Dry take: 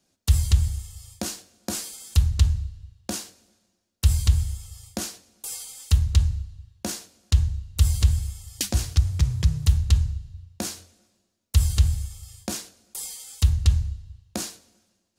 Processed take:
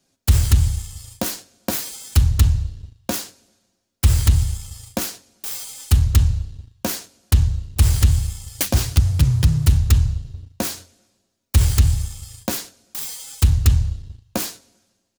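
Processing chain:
phase distortion by the signal itself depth 0.33 ms
comb filter 7.4 ms, depth 32%
leveller curve on the samples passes 1
level +4.5 dB

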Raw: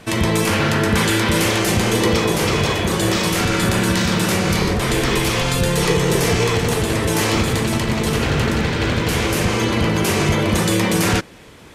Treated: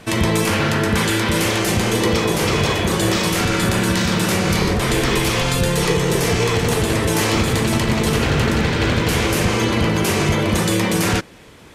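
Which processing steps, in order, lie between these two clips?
speech leveller

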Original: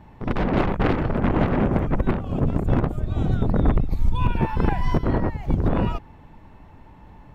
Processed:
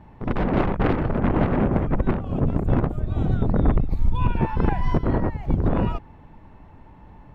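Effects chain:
high-shelf EQ 3,700 Hz −9 dB

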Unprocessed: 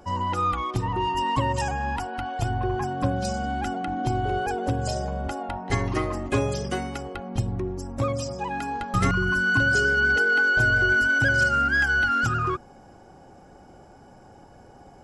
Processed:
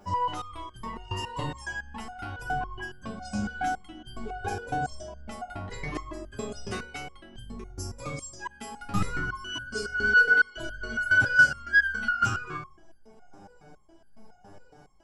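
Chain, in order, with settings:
0:07.58–0:08.92: high-shelf EQ 4,200 Hz +7 dB
rectangular room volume 520 cubic metres, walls furnished, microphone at 1.3 metres
step-sequenced resonator 7.2 Hz 100–1,600 Hz
level +7.5 dB

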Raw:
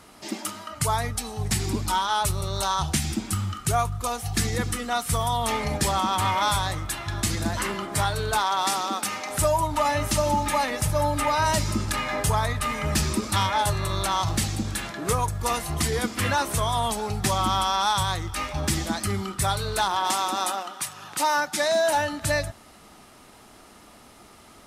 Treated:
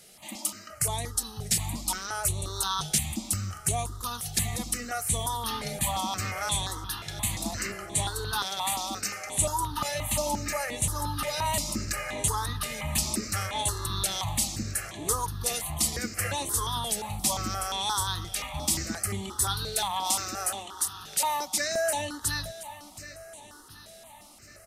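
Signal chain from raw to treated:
high-shelf EQ 3,500 Hz +10 dB
repeating echo 724 ms, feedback 57%, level −15.5 dB
step-sequenced phaser 5.7 Hz 280–5,100 Hz
level −5 dB

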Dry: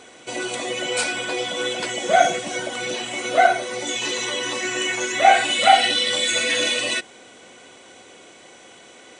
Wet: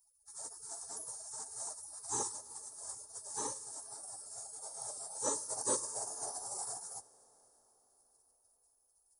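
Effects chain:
gate on every frequency bin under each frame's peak −30 dB weak
drawn EQ curve 100 Hz 0 dB, 190 Hz −11 dB, 270 Hz +1 dB, 720 Hz +12 dB, 1,100 Hz −3 dB, 1,600 Hz −12 dB, 2,700 Hz −30 dB, 5,900 Hz 0 dB, 11,000 Hz +9 dB
convolution reverb RT60 5.1 s, pre-delay 15 ms, DRR 18 dB
level −1.5 dB

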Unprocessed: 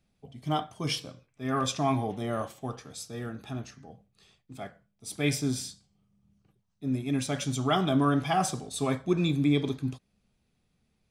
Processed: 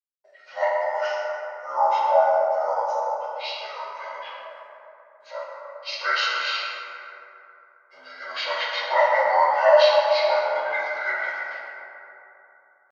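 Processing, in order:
partials spread apart or drawn together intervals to 80%
notch filter 3,500 Hz, Q 13
noise gate −57 dBFS, range −54 dB
elliptic high-pass filter 600 Hz, stop band 50 dB
gain on a spectral selection 0:00.62–0:02.90, 1,500–4,900 Hz −15 dB
tempo change 0.86×
bucket-brigade delay 135 ms, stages 2,048, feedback 71%, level −10 dB
dense smooth reverb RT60 2.7 s, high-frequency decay 0.4×, DRR −3.5 dB
level +8.5 dB

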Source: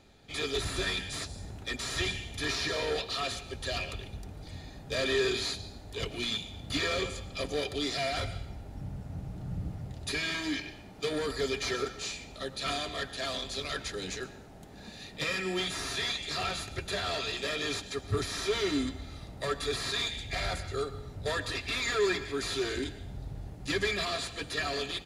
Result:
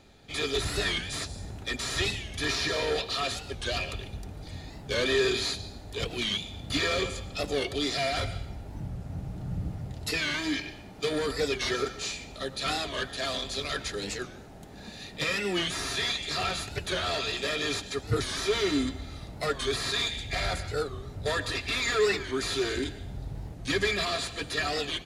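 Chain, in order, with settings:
wow of a warped record 45 rpm, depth 160 cents
level +3 dB

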